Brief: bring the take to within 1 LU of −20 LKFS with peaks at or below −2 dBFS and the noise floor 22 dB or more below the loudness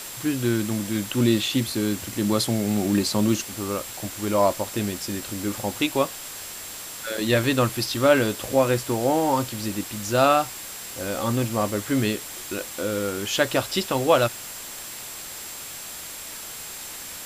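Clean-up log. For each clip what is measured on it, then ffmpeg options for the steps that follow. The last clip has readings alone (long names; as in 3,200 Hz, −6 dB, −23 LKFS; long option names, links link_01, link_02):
interfering tone 7,600 Hz; level of the tone −42 dBFS; background noise floor −37 dBFS; target noise floor −47 dBFS; integrated loudness −24.5 LKFS; sample peak −4.0 dBFS; target loudness −20.0 LKFS
→ -af "bandreject=frequency=7600:width=30"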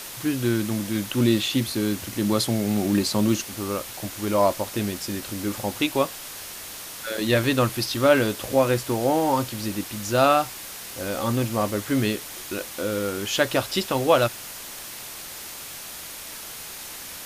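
interfering tone none found; background noise floor −38 dBFS; target noise floor −47 dBFS
→ -af "afftdn=noise_reduction=9:noise_floor=-38"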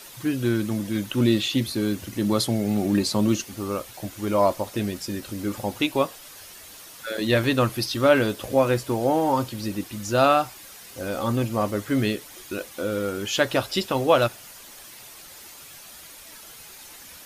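background noise floor −45 dBFS; target noise floor −46 dBFS
→ -af "afftdn=noise_reduction=6:noise_floor=-45"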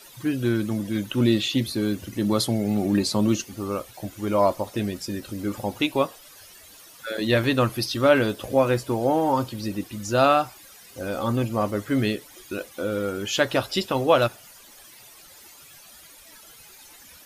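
background noise floor −49 dBFS; integrated loudness −24.0 LKFS; sample peak −4.0 dBFS; target loudness −20.0 LKFS
→ -af "volume=4dB,alimiter=limit=-2dB:level=0:latency=1"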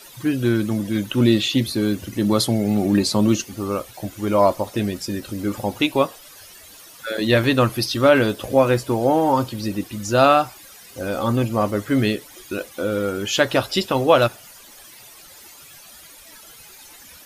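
integrated loudness −20.5 LKFS; sample peak −2.0 dBFS; background noise floor −45 dBFS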